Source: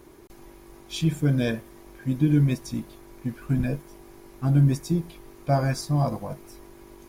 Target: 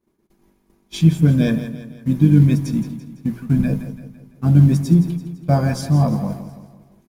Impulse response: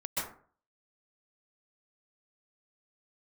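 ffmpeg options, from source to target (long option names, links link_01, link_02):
-filter_complex "[0:a]asplit=2[link_01][link_02];[link_02]asetrate=29433,aresample=44100,atempo=1.49831,volume=-17dB[link_03];[link_01][link_03]amix=inputs=2:normalize=0,agate=range=-33dB:threshold=-35dB:ratio=3:detection=peak,asplit=2[link_04][link_05];[link_05]acrusher=bits=5:mode=log:mix=0:aa=0.000001,volume=-10dB[link_06];[link_04][link_06]amix=inputs=2:normalize=0,equalizer=frequency=190:width=2.3:gain=14.5,bandreject=frequency=60:width_type=h:width=6,bandreject=frequency=120:width_type=h:width=6,bandreject=frequency=180:width_type=h:width=6,asplit=2[link_07][link_08];[link_08]aecho=0:1:168|336|504|672|840:0.266|0.128|0.0613|0.0294|0.0141[link_09];[link_07][link_09]amix=inputs=2:normalize=0"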